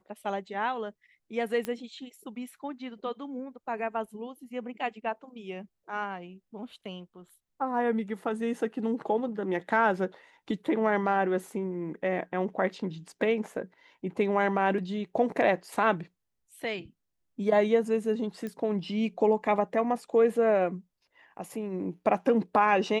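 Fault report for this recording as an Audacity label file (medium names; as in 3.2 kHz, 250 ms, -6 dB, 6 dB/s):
1.650000	1.650000	pop -18 dBFS
18.470000	18.470000	pop -24 dBFS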